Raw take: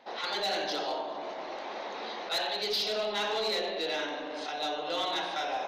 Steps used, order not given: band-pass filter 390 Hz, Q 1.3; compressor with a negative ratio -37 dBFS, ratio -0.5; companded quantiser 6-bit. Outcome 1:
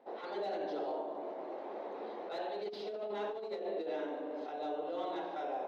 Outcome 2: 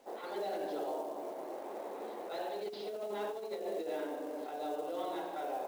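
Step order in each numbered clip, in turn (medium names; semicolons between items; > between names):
companded quantiser > band-pass filter > compressor with a negative ratio; band-pass filter > compressor with a negative ratio > companded quantiser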